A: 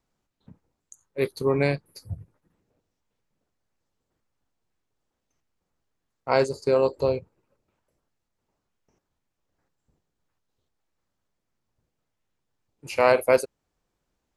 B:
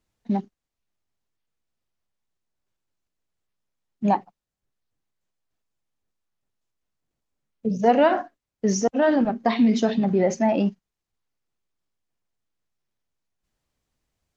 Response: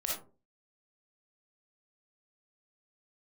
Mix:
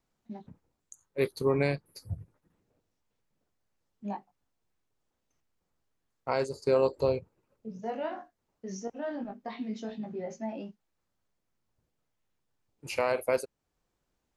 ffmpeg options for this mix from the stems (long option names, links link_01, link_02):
-filter_complex "[0:a]volume=-2dB[link_01];[1:a]flanger=delay=18:depth=4.7:speed=0.19,volume=-14dB[link_02];[link_01][link_02]amix=inputs=2:normalize=0,alimiter=limit=-15dB:level=0:latency=1:release=478"